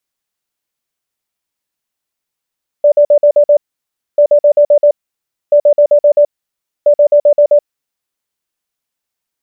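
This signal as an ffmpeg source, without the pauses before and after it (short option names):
-f lavfi -i "aevalsrc='0.668*sin(2*PI*586*t)*clip(min(mod(mod(t,1.34),0.13),0.08-mod(mod(t,1.34),0.13))/0.005,0,1)*lt(mod(t,1.34),0.78)':d=5.36:s=44100"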